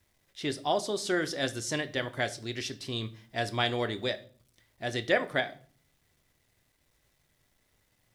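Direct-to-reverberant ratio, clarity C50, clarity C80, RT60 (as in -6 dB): 10.0 dB, 18.0 dB, 22.0 dB, 0.45 s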